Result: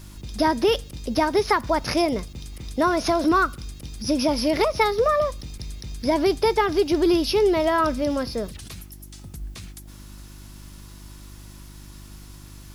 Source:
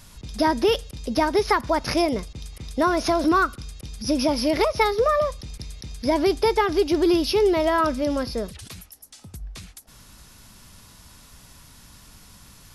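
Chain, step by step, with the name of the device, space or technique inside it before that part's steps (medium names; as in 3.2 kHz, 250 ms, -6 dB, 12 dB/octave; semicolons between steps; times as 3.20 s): video cassette with head-switching buzz (mains buzz 50 Hz, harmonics 7, -43 dBFS -6 dB/octave; white noise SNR 38 dB)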